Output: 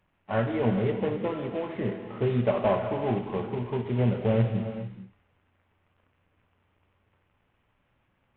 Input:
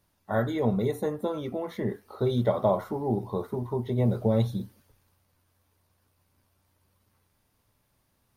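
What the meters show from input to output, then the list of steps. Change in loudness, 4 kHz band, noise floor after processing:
+0.5 dB, 0.0 dB, -72 dBFS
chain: CVSD coder 16 kbps; gated-style reverb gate 470 ms flat, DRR 6 dB

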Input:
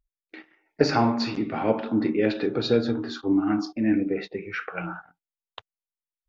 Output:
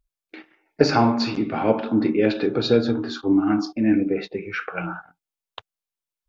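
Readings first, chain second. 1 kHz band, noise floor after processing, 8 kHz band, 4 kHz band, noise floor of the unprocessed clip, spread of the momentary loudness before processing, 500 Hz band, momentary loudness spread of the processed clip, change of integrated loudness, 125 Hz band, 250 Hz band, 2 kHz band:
+3.5 dB, under -85 dBFS, no reading, +3.5 dB, under -85 dBFS, 10 LU, +3.5 dB, 10 LU, +3.5 dB, +3.5 dB, +3.5 dB, +3.0 dB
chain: band-stop 1.9 kHz, Q 12; trim +3.5 dB

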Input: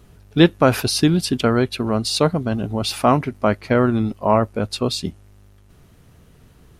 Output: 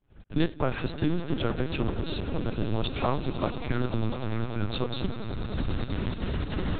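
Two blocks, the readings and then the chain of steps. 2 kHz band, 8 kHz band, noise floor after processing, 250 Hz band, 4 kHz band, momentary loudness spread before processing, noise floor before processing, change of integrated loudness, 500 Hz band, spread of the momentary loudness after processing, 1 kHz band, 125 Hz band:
-9.5 dB, under -40 dB, -44 dBFS, -10.5 dB, -12.5 dB, 7 LU, -51 dBFS, -12.0 dB, -12.5 dB, 4 LU, -13.0 dB, -7.0 dB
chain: partial rectifier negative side -3 dB; recorder AGC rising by 43 dB/s; time-frequency box 3.47–4.74 s, 400–1300 Hz -24 dB; expander -38 dBFS; in parallel at 0 dB: compression 20:1, threshold -23 dBFS, peak gain reduction 16.5 dB; on the sum: feedback comb 99 Hz, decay 0.45 s, harmonics odd, mix 60%; trance gate "xxx.xxx.xxxx." 198 bpm -60 dB; on a send: echo with a slow build-up 98 ms, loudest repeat 8, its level -16 dB; on the sum: LPC vocoder at 8 kHz pitch kept; trim -6 dB

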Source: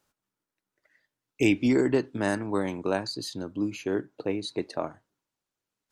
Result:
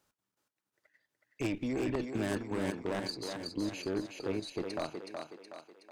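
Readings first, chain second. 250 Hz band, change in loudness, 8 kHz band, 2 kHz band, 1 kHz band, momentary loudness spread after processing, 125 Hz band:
-8.0 dB, -8.0 dB, -5.0 dB, -8.0 dB, -6.5 dB, 11 LU, -6.0 dB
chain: single-diode clipper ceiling -24 dBFS; level held to a coarse grid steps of 11 dB; wavefolder -24.5 dBFS; on a send: thinning echo 371 ms, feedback 51%, high-pass 250 Hz, level -4.5 dB

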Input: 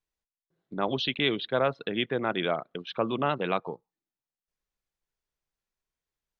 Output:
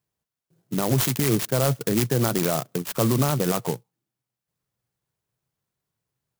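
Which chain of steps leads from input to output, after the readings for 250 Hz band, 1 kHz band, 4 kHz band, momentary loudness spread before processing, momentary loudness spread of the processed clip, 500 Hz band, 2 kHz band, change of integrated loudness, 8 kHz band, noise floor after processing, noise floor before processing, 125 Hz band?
+8.0 dB, +0.5 dB, -0.5 dB, 9 LU, 7 LU, +3.5 dB, -1.5 dB, +5.5 dB, no reading, under -85 dBFS, under -85 dBFS, +15.0 dB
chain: high-pass 87 Hz 12 dB/octave; peaking EQ 120 Hz +15 dB 0.97 oct; peak limiter -19.5 dBFS, peak gain reduction 8.5 dB; sampling jitter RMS 0.11 ms; trim +7.5 dB

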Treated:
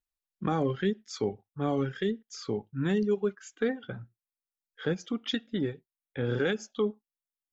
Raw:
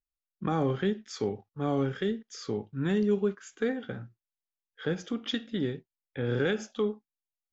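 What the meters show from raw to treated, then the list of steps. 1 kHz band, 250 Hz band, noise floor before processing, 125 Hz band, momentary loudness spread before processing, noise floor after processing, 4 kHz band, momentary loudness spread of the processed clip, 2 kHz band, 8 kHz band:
0.0 dB, -0.5 dB, under -85 dBFS, -0.5 dB, 10 LU, under -85 dBFS, +0.5 dB, 8 LU, 0.0 dB, no reading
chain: reverb removal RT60 1.1 s; trim +1 dB

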